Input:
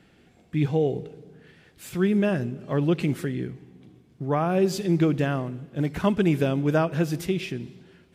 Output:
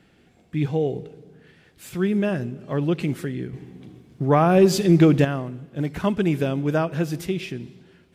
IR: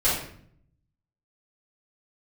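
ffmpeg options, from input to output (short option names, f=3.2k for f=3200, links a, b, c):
-filter_complex "[0:a]asettb=1/sr,asplit=3[a][b][c];[a]atrim=end=3.534[d];[b]atrim=start=3.53:end=5.25,asetpts=PTS-STARTPTS,afade=t=in:d=0.004:c=qsin,afade=t=out:st=1.716:d=0.004:c=qsin,acontrast=88[e];[c]atrim=start=5.246[f];[d][e]acrossfade=d=0.004:c1=hsin:c2=qsin[g];[g][f]acrossfade=d=0.004:c1=qsin:c2=hsin"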